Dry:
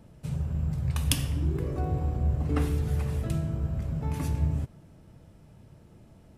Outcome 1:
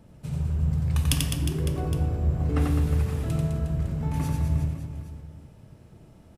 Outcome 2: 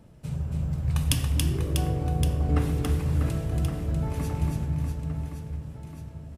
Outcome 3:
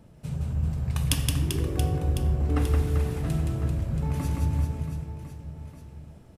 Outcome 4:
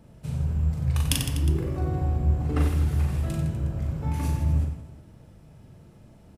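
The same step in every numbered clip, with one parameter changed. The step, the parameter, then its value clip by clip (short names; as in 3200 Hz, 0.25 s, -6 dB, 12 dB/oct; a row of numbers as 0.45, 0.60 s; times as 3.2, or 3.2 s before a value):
reverse bouncing-ball echo, first gap: 90, 280, 170, 40 ms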